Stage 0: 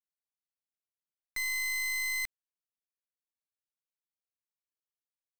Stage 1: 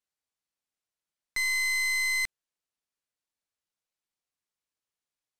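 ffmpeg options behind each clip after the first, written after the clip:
ffmpeg -i in.wav -af "lowpass=10000,volume=5.5dB" out.wav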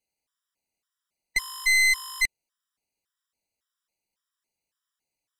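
ffmpeg -i in.wav -af "afftfilt=real='re*gt(sin(2*PI*1.8*pts/sr)*(1-2*mod(floor(b*sr/1024/980),2)),0)':imag='im*gt(sin(2*PI*1.8*pts/sr)*(1-2*mod(floor(b*sr/1024/980),2)),0)':win_size=1024:overlap=0.75,volume=8dB" out.wav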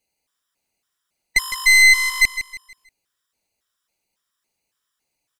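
ffmpeg -i in.wav -af "aecho=1:1:159|318|477|636:0.266|0.0931|0.0326|0.0114,volume=8dB" out.wav

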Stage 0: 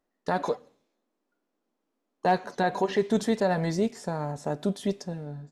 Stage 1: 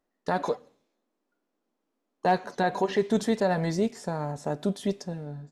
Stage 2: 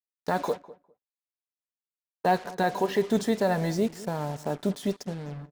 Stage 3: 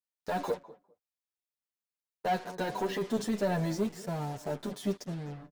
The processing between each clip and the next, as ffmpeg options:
ffmpeg -i in.wav -af anull out.wav
ffmpeg -i in.wav -filter_complex "[0:a]acrusher=bits=6:mix=0:aa=0.5,asplit=2[link_01][link_02];[link_02]adelay=202,lowpass=frequency=1300:poles=1,volume=-18dB,asplit=2[link_03][link_04];[link_04]adelay=202,lowpass=frequency=1300:poles=1,volume=0.16[link_05];[link_01][link_03][link_05]amix=inputs=3:normalize=0" out.wav
ffmpeg -i in.wav -filter_complex "[0:a]asoftclip=type=tanh:threshold=-21.5dB,asplit=2[link_01][link_02];[link_02]adelay=8.2,afreqshift=-2[link_03];[link_01][link_03]amix=inputs=2:normalize=1" out.wav

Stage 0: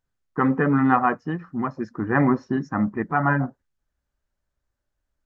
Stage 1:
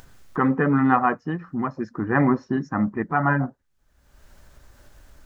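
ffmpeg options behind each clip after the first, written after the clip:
ffmpeg -i in.wav -af "acompressor=mode=upward:threshold=-25dB:ratio=2.5" out.wav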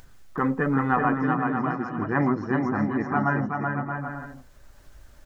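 ffmpeg -i in.wav -af "flanger=delay=0.4:depth=1.7:regen=82:speed=1:shape=triangular,aecho=1:1:380|627|787.6|891.9|959.7:0.631|0.398|0.251|0.158|0.1,volume=1dB" out.wav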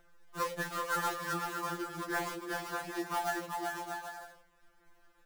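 ffmpeg -i in.wav -filter_complex "[0:a]acrossover=split=270 2500:gain=0.224 1 0.0708[link_01][link_02][link_03];[link_01][link_02][link_03]amix=inputs=3:normalize=0,acrusher=bits=2:mode=log:mix=0:aa=0.000001,afftfilt=real='re*2.83*eq(mod(b,8),0)':imag='im*2.83*eq(mod(b,8),0)':win_size=2048:overlap=0.75,volume=-4.5dB" out.wav

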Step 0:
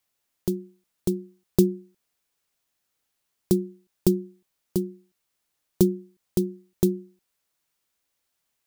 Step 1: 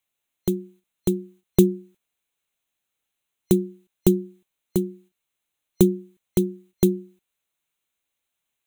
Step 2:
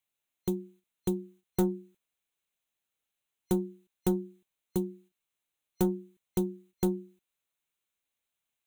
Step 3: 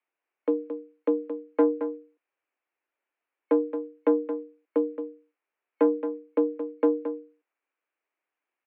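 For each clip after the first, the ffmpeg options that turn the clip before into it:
ffmpeg -i in.wav -af "agate=range=-7dB:threshold=-54dB:ratio=16:detection=peak,superequalizer=12b=1.58:13b=1.41:14b=0.282,volume=3dB" out.wav
ffmpeg -i in.wav -af "asoftclip=type=tanh:threshold=-14.5dB,volume=-5.5dB" out.wav
ffmpeg -i in.wav -af "aecho=1:1:222:0.316,highpass=frequency=170:width_type=q:width=0.5412,highpass=frequency=170:width_type=q:width=1.307,lowpass=frequency=2300:width_type=q:width=0.5176,lowpass=frequency=2300:width_type=q:width=0.7071,lowpass=frequency=2300:width_type=q:width=1.932,afreqshift=110,volume=6.5dB" out.wav

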